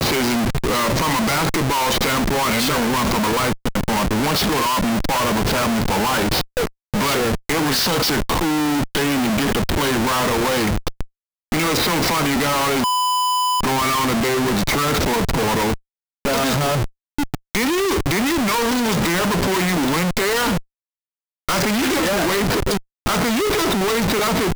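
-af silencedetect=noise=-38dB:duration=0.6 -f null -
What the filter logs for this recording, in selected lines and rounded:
silence_start: 20.61
silence_end: 21.49 | silence_duration: 0.87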